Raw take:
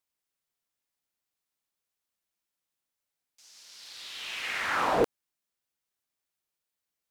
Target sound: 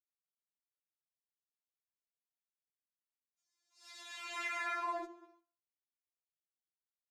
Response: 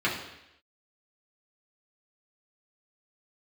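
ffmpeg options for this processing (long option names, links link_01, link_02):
-filter_complex "[0:a]highpass=360,aemphasis=mode=reproduction:type=75fm,agate=range=-24dB:threshold=-54dB:ratio=16:detection=peak,highshelf=frequency=5400:width_type=q:width=1.5:gain=8.5,asplit=2[link_01][link_02];[link_02]adelay=204.1,volume=-30dB,highshelf=frequency=4000:gain=-4.59[link_03];[link_01][link_03]amix=inputs=2:normalize=0,asplit=2[link_04][link_05];[link_05]adynamicsmooth=sensitivity=6:basefreq=1900,volume=-1dB[link_06];[link_04][link_06]amix=inputs=2:normalize=0,flanger=delay=4.6:depth=2.5:regen=45:speed=0.74:shape=sinusoidal,asplit=2[link_07][link_08];[1:a]atrim=start_sample=2205,asetrate=66150,aresample=44100[link_09];[link_08][link_09]afir=irnorm=-1:irlink=0,volume=-16dB[link_10];[link_07][link_10]amix=inputs=2:normalize=0,acompressor=threshold=-34dB:ratio=8,afftfilt=real='re*4*eq(mod(b,16),0)':imag='im*4*eq(mod(b,16),0)':win_size=2048:overlap=0.75,volume=1.5dB"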